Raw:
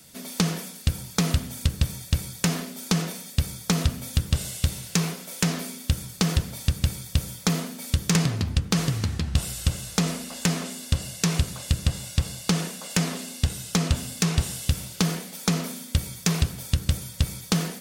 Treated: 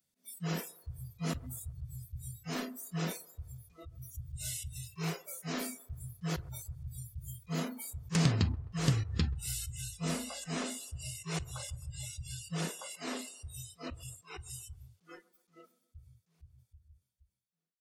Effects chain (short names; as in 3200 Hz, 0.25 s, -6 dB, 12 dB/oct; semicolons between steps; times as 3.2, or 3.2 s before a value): ending faded out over 5.55 s; auto swell 0.142 s; 3.4–4.14 compressor 3:1, threshold -36 dBFS, peak gain reduction 7 dB; spectral noise reduction 29 dB; on a send: band-limited delay 0.13 s, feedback 47%, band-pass 690 Hz, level -20 dB; on the sum: gain -2.5 dB